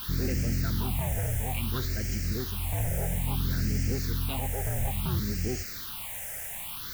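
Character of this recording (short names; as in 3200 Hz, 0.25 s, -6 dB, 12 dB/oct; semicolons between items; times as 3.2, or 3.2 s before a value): a quantiser's noise floor 6-bit, dither triangular; phasing stages 6, 0.59 Hz, lowest notch 290–1000 Hz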